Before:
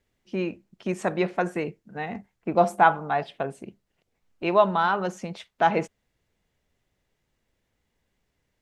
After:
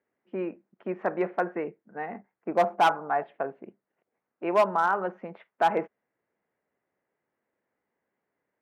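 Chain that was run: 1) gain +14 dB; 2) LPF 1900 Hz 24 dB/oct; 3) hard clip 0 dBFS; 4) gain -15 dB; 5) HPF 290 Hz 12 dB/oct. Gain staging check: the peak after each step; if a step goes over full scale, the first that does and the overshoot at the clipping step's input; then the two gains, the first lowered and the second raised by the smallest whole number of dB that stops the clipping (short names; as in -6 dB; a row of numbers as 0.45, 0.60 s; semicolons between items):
+9.0, +8.5, 0.0, -15.0, -11.0 dBFS; step 1, 8.5 dB; step 1 +5 dB, step 4 -6 dB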